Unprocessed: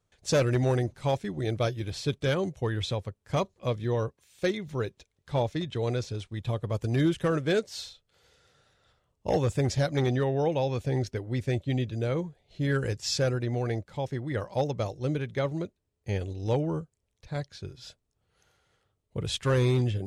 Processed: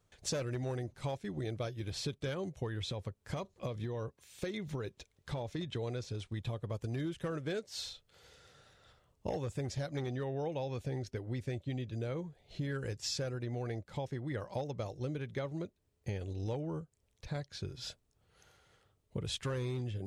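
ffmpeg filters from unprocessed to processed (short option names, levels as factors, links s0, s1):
-filter_complex "[0:a]asettb=1/sr,asplit=3[s0][s1][s2];[s0]atrim=end=2.824[s3];[s1]atrim=start=2.82:end=5.59,asetpts=PTS-STARTPTS,afade=t=in:d=0.004:c=qsin,afade=t=out:st=2.766:d=0.004:c=qsin,acompressor=threshold=0.0398:ratio=6:attack=3.2:release=140:knee=1:detection=peak[s4];[s2]atrim=start=5.586[s5];[s3][s4]acrossfade=d=0.004:c1=hsin:c2=qsin[s6];[s6][s5]acrossfade=d=0.004:c1=qsin:c2=hsin,acompressor=threshold=0.0112:ratio=5,volume=1.41"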